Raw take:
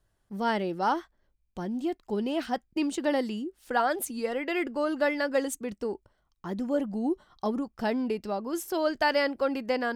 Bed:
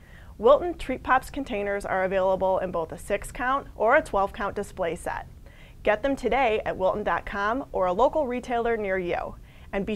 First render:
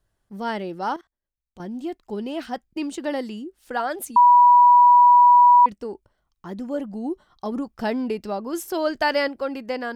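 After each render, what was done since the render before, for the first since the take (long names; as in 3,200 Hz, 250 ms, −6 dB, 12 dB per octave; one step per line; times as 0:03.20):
0:00.96–0:01.60: output level in coarse steps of 22 dB
0:04.16–0:05.66: beep over 975 Hz −9 dBFS
0:07.52–0:09.28: clip gain +3.5 dB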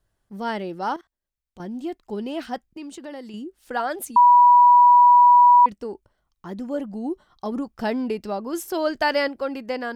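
0:02.67–0:03.34: downward compressor 2 to 1, threshold −40 dBFS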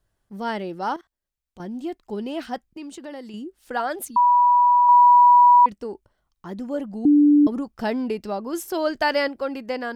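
0:04.08–0:04.89: phaser with its sweep stopped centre 2,400 Hz, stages 6
0:07.05–0:07.47: beep over 293 Hz −11 dBFS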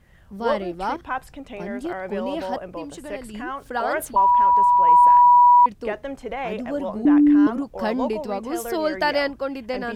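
mix in bed −6.5 dB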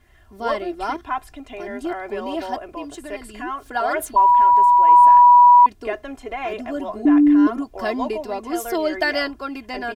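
low-shelf EQ 430 Hz −4 dB
comb filter 2.9 ms, depth 82%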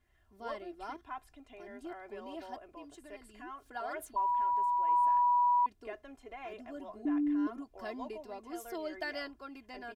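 level −17.5 dB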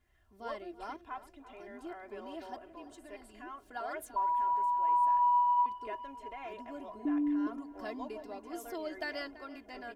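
tape delay 334 ms, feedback 74%, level −15 dB, low-pass 2,600 Hz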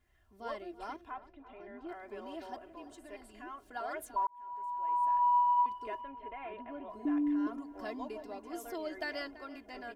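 0:01.11–0:01.89: high-frequency loss of the air 250 metres
0:04.27–0:05.34: fade in
0:06.01–0:06.90: low-pass filter 3,000 Hz 24 dB per octave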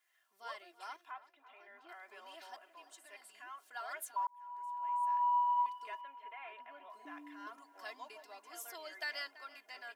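high-pass filter 1,100 Hz 12 dB per octave
high-shelf EQ 5,000 Hz +5 dB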